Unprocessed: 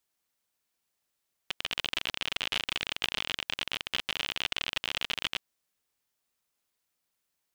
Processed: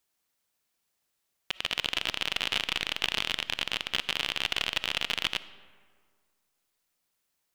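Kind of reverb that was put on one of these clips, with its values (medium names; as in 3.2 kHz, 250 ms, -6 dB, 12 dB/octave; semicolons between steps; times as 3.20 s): algorithmic reverb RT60 1.8 s, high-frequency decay 0.55×, pre-delay 15 ms, DRR 15 dB; trim +2.5 dB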